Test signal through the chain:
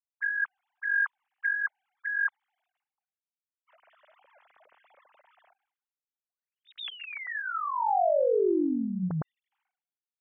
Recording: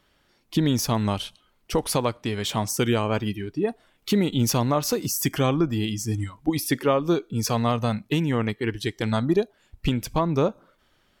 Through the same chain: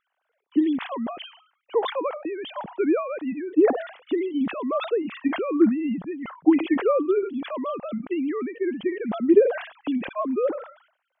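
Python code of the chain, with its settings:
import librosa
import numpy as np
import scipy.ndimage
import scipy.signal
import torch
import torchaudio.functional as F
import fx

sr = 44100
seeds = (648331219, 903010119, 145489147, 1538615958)

y = fx.sine_speech(x, sr)
y = fx.lowpass(y, sr, hz=1200.0, slope=6)
y = fx.sustainer(y, sr, db_per_s=110.0)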